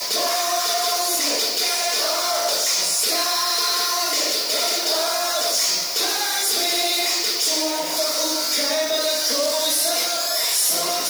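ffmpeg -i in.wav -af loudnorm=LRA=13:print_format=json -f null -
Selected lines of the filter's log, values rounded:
"input_i" : "-18.8",
"input_tp" : "-8.7",
"input_lra" : "0.5",
"input_thresh" : "-28.8",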